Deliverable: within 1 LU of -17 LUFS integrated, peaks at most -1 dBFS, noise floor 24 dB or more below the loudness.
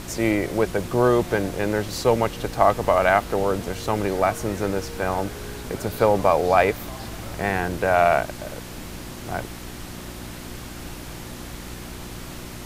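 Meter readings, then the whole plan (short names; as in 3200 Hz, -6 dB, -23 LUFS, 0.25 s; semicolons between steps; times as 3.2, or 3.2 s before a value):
hum 60 Hz; harmonics up to 360 Hz; hum level -38 dBFS; noise floor -37 dBFS; noise floor target -47 dBFS; loudness -22.5 LUFS; peak -2.5 dBFS; loudness target -17.0 LUFS
-> de-hum 60 Hz, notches 6; noise print and reduce 10 dB; gain +5.5 dB; limiter -1 dBFS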